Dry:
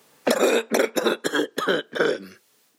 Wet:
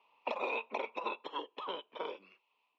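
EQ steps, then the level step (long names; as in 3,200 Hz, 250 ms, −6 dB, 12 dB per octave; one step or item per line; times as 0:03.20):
dynamic equaliser 1,700 Hz, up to −3 dB, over −36 dBFS, Q 0.97
pair of resonant band-passes 1,600 Hz, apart 1.4 octaves
high-frequency loss of the air 250 metres
+1.0 dB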